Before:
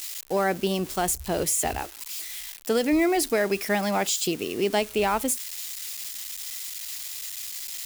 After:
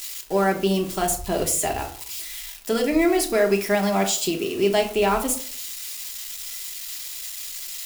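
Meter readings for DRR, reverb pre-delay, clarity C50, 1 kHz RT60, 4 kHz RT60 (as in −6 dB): 2.0 dB, 3 ms, 11.0 dB, 0.50 s, 0.30 s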